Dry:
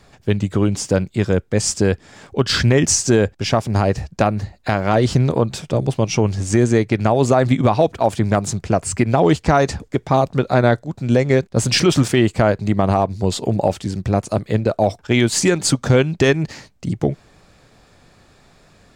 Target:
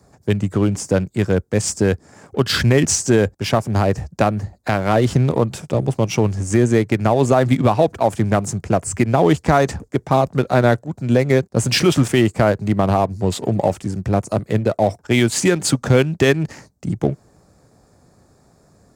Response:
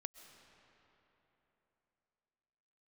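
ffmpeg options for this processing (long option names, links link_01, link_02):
-filter_complex "[0:a]highpass=55,acrossover=split=120|4900[link_01][link_02][link_03];[link_02]adynamicsmooth=sensitivity=7:basefreq=880[link_04];[link_01][link_04][link_03]amix=inputs=3:normalize=0"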